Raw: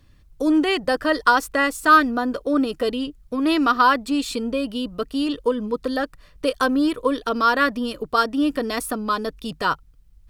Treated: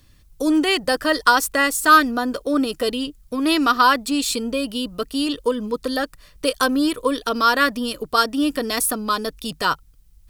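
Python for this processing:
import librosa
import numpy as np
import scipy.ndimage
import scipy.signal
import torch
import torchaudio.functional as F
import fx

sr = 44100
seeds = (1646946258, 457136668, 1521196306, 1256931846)

y = fx.high_shelf(x, sr, hz=4000.0, db=12.0)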